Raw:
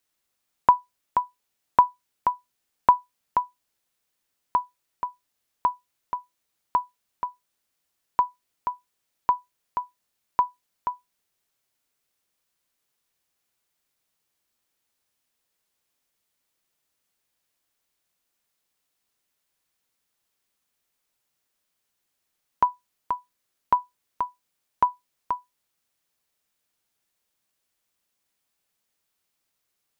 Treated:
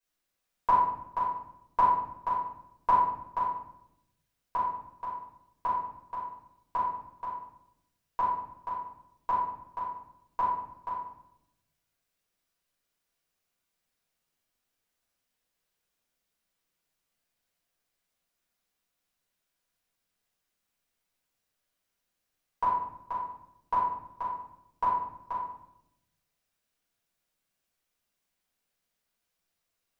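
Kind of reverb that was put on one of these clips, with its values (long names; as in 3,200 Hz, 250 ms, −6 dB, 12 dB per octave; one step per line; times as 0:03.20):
rectangular room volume 230 cubic metres, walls mixed, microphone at 5.1 metres
level −16.5 dB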